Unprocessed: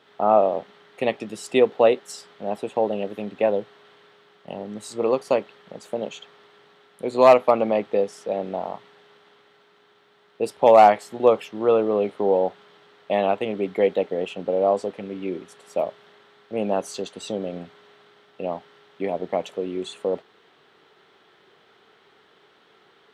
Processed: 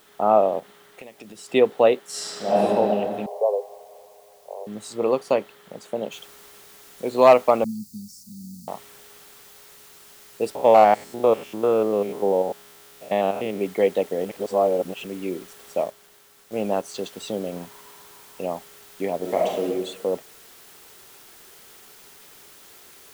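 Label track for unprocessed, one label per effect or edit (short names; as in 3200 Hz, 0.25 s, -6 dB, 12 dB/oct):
0.590000	1.520000	compressor 16:1, threshold -37 dBFS
2.080000	2.630000	reverb throw, RT60 2.9 s, DRR -11 dB
3.260000	4.670000	Chebyshev band-pass 410–1100 Hz, order 5
6.120000	6.120000	noise floor step -59 dB -49 dB
7.640000	8.680000	Chebyshev band-stop 230–4500 Hz, order 5
10.550000	13.610000	stepped spectrum every 0.1 s
14.250000	15.050000	reverse
15.800000	16.950000	G.711 law mismatch coded by A
17.520000	18.440000	bell 970 Hz +11.5 dB 0.27 oct
19.190000	19.640000	reverb throw, RT60 0.98 s, DRR -1.5 dB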